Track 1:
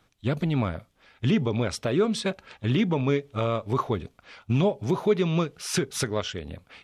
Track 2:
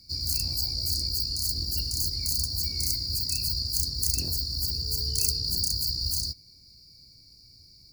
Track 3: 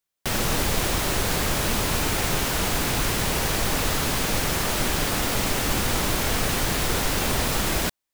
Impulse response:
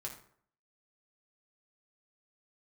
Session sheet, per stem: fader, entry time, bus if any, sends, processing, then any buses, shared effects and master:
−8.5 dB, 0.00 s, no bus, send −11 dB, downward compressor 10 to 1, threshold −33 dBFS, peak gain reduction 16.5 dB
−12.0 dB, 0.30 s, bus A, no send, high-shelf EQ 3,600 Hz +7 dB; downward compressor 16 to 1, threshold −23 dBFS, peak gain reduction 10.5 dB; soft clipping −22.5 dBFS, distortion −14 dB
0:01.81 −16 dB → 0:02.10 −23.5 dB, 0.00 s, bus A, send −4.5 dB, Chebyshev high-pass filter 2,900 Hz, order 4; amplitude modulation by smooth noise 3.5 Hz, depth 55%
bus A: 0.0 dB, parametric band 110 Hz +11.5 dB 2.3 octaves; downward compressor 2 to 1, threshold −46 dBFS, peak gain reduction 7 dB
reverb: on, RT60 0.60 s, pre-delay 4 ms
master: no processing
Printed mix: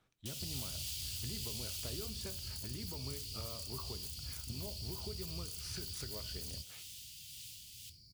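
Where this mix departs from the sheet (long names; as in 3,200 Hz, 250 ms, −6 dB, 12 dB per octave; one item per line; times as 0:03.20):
stem 1 −8.5 dB → −14.5 dB
reverb return +7.0 dB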